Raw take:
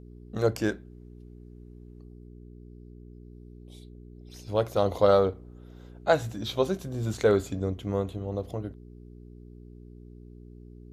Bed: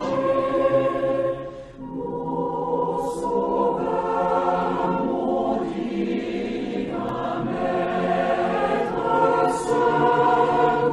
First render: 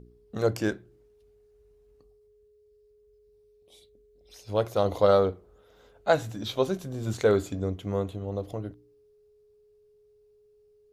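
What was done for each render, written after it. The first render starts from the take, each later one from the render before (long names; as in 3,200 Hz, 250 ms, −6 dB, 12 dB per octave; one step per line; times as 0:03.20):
hum removal 60 Hz, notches 6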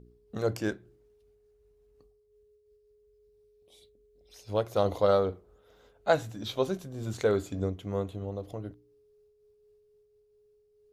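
amplitude modulation by smooth noise, depth 60%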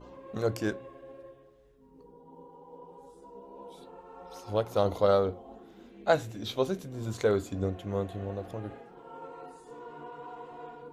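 mix in bed −26 dB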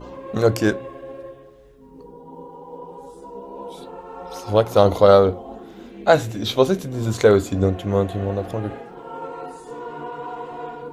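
level +12 dB
brickwall limiter −1 dBFS, peak gain reduction 2.5 dB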